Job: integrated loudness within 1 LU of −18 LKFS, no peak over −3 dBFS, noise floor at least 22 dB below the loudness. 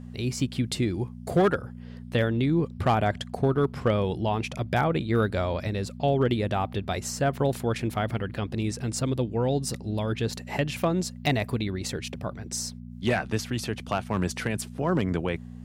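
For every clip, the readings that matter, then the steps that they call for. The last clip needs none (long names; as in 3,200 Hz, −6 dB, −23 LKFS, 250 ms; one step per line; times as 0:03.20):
share of clipped samples 0.3%; peaks flattened at −15.0 dBFS; mains hum 60 Hz; hum harmonics up to 240 Hz; level of the hum −38 dBFS; integrated loudness −27.5 LKFS; sample peak −15.0 dBFS; target loudness −18.0 LKFS
→ clipped peaks rebuilt −15 dBFS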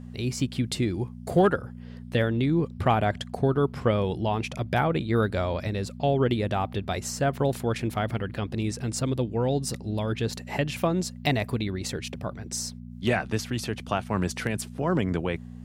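share of clipped samples 0.0%; mains hum 60 Hz; hum harmonics up to 240 Hz; level of the hum −38 dBFS
→ hum removal 60 Hz, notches 4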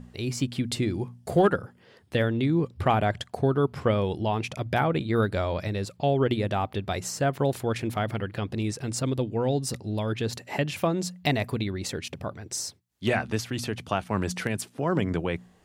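mains hum none found; integrated loudness −28.0 LKFS; sample peak −9.5 dBFS; target loudness −18.0 LKFS
→ level +10 dB
brickwall limiter −3 dBFS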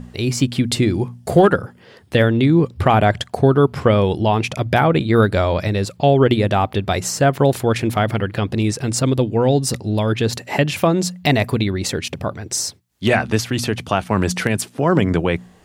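integrated loudness −18.0 LKFS; sample peak −3.0 dBFS; background noise floor −48 dBFS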